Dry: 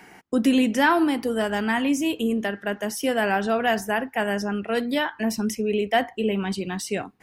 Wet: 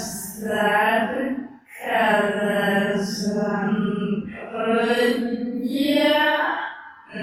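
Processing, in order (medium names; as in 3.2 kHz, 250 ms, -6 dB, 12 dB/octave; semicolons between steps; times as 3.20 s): Paulstretch 5.1×, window 0.05 s, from 3.79 s; trim +3.5 dB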